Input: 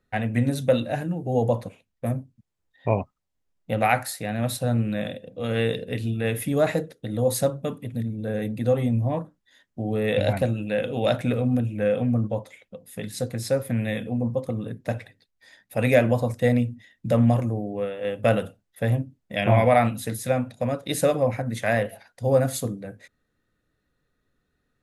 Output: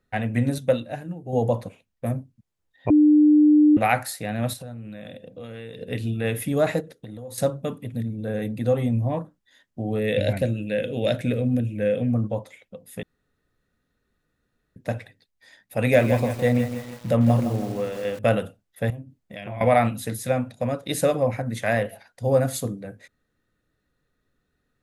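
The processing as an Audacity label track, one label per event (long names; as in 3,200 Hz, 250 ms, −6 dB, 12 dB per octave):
0.580000	1.330000	expander for the loud parts, over −32 dBFS
2.900000	3.770000	beep over 300 Hz −11.5 dBFS
4.530000	5.810000	downward compressor 5 to 1, threshold −35 dBFS
6.800000	7.380000	downward compressor 16 to 1, threshold −33 dBFS
9.990000	12.100000	flat-topped bell 1,000 Hz −9.5 dB 1.1 octaves
13.030000	14.760000	fill with room tone
15.770000	18.190000	feedback echo at a low word length 162 ms, feedback 55%, word length 6 bits, level −9 dB
18.900000	19.610000	downward compressor 2.5 to 1, threshold −38 dBFS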